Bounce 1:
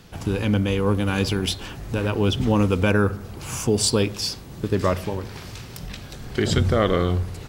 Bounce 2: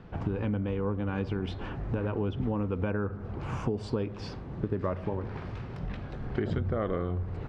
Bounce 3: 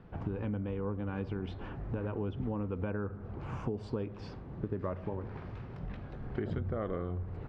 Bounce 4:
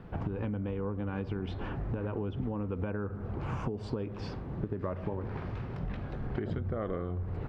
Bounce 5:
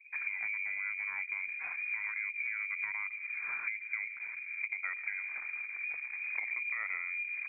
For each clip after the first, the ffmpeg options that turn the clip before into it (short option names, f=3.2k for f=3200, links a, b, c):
-af "lowpass=1.5k,acompressor=threshold=-27dB:ratio=6"
-af "highshelf=f=3.7k:g=-8.5,volume=-5dB"
-af "acompressor=threshold=-36dB:ratio=6,volume=6dB"
-af "anlmdn=0.398,lowpass=f=2.1k:t=q:w=0.5098,lowpass=f=2.1k:t=q:w=0.6013,lowpass=f=2.1k:t=q:w=0.9,lowpass=f=2.1k:t=q:w=2.563,afreqshift=-2500,volume=-3dB"